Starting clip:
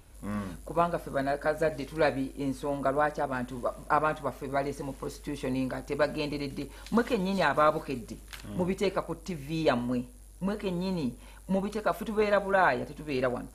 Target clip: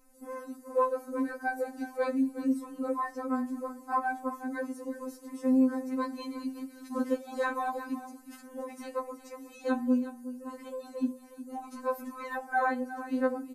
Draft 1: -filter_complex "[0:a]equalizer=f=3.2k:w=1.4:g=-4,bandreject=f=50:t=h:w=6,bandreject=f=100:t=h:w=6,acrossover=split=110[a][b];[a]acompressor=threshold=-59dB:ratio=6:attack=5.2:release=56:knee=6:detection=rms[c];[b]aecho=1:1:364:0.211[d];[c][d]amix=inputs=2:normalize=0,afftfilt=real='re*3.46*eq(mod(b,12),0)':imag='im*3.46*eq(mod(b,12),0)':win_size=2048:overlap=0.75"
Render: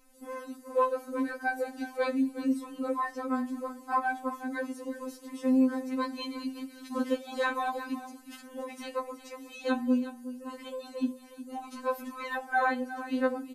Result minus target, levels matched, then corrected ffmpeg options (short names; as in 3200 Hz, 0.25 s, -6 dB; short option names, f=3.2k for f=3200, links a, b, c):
4000 Hz band +8.0 dB
-filter_complex "[0:a]equalizer=f=3.2k:w=1.4:g=-16,bandreject=f=50:t=h:w=6,bandreject=f=100:t=h:w=6,acrossover=split=110[a][b];[a]acompressor=threshold=-59dB:ratio=6:attack=5.2:release=56:knee=6:detection=rms[c];[b]aecho=1:1:364:0.211[d];[c][d]amix=inputs=2:normalize=0,afftfilt=real='re*3.46*eq(mod(b,12),0)':imag='im*3.46*eq(mod(b,12),0)':win_size=2048:overlap=0.75"